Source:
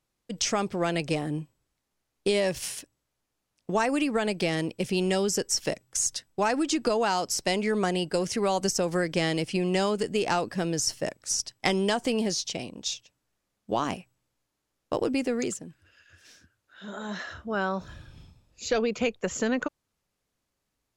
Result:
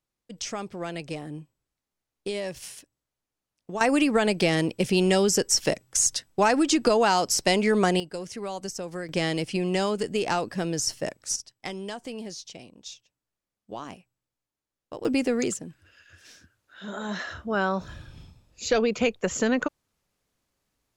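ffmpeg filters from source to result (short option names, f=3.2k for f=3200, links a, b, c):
-af "asetnsamples=n=441:p=0,asendcmd='3.81 volume volume 4.5dB;8 volume volume -8dB;9.09 volume volume 0dB;11.36 volume volume -10dB;15.05 volume volume 3dB',volume=-6.5dB"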